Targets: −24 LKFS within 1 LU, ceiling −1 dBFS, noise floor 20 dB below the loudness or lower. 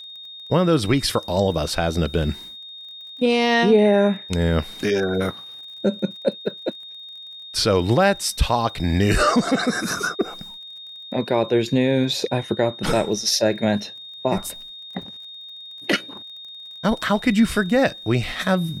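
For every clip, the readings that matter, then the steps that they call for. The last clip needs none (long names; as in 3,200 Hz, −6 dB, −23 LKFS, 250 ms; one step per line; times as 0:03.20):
crackle rate 32 per second; interfering tone 3,700 Hz; level of the tone −36 dBFS; integrated loudness −21.0 LKFS; sample peak −6.5 dBFS; target loudness −24.0 LKFS
→ click removal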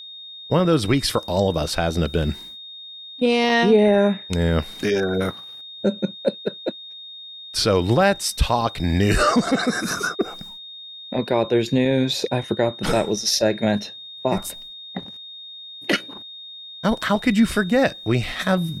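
crackle rate 0.11 per second; interfering tone 3,700 Hz; level of the tone −36 dBFS
→ notch filter 3,700 Hz, Q 30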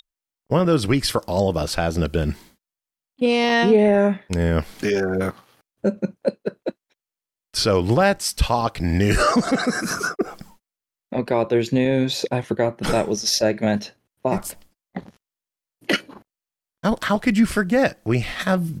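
interfering tone none found; integrated loudness −21.0 LKFS; sample peak −6.5 dBFS; target loudness −24.0 LKFS
→ level −3 dB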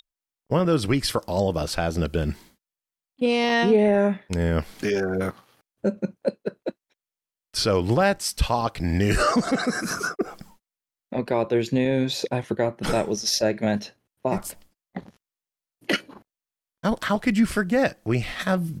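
integrated loudness −24.0 LKFS; sample peak −9.5 dBFS; background noise floor −91 dBFS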